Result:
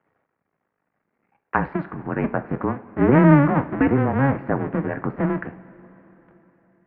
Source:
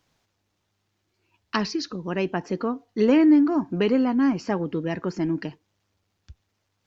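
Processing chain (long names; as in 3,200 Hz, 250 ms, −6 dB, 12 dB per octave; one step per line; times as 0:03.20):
sub-harmonics by changed cycles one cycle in 2, muted
single-sideband voice off tune −140 Hz 300–2,100 Hz
coupled-rooms reverb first 0.3 s, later 3.9 s, from −18 dB, DRR 9.5 dB
level +7 dB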